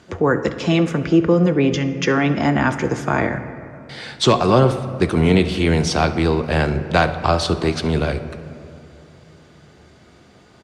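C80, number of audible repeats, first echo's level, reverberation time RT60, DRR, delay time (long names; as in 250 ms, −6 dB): 12.0 dB, 1, −19.0 dB, 2.6 s, 8.5 dB, 70 ms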